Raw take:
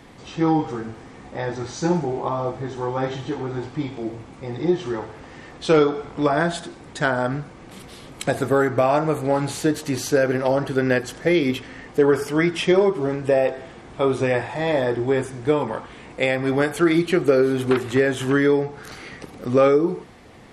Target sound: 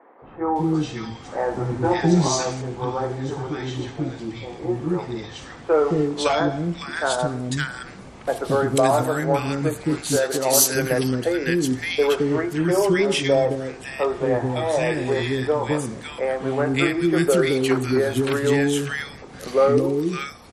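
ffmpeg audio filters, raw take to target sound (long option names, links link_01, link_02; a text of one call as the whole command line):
ffmpeg -i in.wav -filter_complex "[0:a]asettb=1/sr,asplit=3[link_01][link_02][link_03];[link_01]atrim=end=1.284[link_04];[link_02]atrim=start=1.28:end=2.06,asetpts=PTS-STARTPTS,afade=type=in:duration=0.004:curve=qsin,afade=type=out:start_time=0.776:duration=0.004:curve=qsin,acontrast=32[link_05];[link_03]atrim=start=2.056[link_06];[link_04][link_05]acrossfade=duration=0.004:curve1=hsin:curve2=qsin[link_07];[link_07][link_06]acrossfade=duration=0.004:curve1=qsin:curve2=hsin,asettb=1/sr,asplit=3[link_08][link_09][link_10];[link_08]atrim=end=9.944[link_11];[link_09]atrim=start=9.94:end=10.53,asetpts=PTS-STARTPTS,afade=type=in:duration=0.004:curve=qsin,afade=type=out:start_time=0.586:duration=0.004:curve=qsin,aemphasis=mode=production:type=bsi[link_12];[link_10]atrim=start=10.526[link_13];[link_11][link_12]acrossfade=duration=0.004:curve1=hsin:curve2=qsin[link_14];[link_14][link_13]acrossfade=duration=0.004:curve1=qsin:curve2=hsin,acrossover=split=370|1500[link_15][link_16][link_17];[link_15]adelay=220[link_18];[link_17]adelay=560[link_19];[link_18][link_16][link_19]amix=inputs=3:normalize=0,adynamicequalizer=threshold=0.00891:dfrequency=4200:dqfactor=0.7:tfrequency=4200:tqfactor=0.7:attack=5:release=100:ratio=0.375:range=2.5:mode=boostabove:tftype=highshelf,volume=1.5dB" out.wav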